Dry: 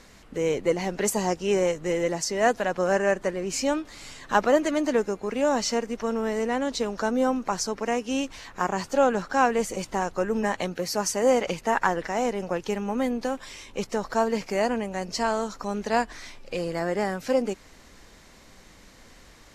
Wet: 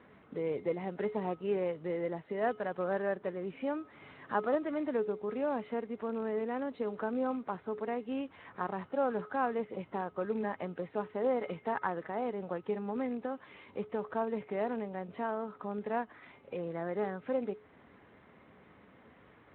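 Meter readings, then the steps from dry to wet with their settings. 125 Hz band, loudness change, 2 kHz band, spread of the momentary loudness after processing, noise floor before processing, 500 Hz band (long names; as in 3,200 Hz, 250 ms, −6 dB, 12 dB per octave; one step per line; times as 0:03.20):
−9.0 dB, −9.5 dB, −12.5 dB, 7 LU, −52 dBFS, −9.0 dB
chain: loose part that buzzes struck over −31 dBFS, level −29 dBFS
low-pass filter 1,900 Hz 12 dB per octave
in parallel at +3 dB: downward compressor 12 to 1, threshold −37 dBFS, peak gain reduction 22.5 dB
on the sum: tuned comb filter 420 Hz, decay 0.37 s, harmonics odd, mix 70%
level −1.5 dB
Speex 18 kbit/s 8,000 Hz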